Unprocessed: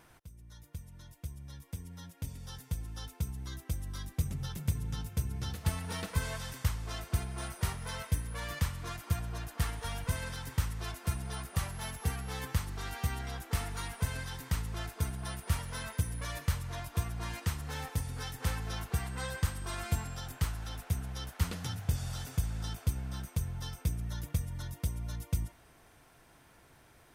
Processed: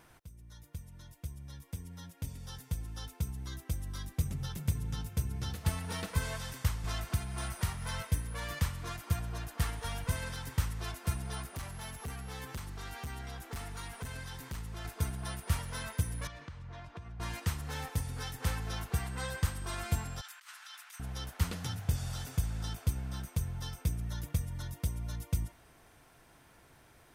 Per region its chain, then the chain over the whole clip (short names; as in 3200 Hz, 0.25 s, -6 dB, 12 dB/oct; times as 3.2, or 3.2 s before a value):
6.84–8.01 bell 430 Hz -6 dB 0.92 oct + three-band squash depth 70%
11.48–14.85 hard clip -30.5 dBFS + compressor 2:1, threshold -41 dBFS
16.27–17.2 compressor 20:1, threshold -40 dBFS + air absorption 140 m + three-band expander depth 100%
20.21–21 HPF 1200 Hz 24 dB/oct + high shelf 9900 Hz -6.5 dB + negative-ratio compressor -49 dBFS, ratio -0.5
whole clip: dry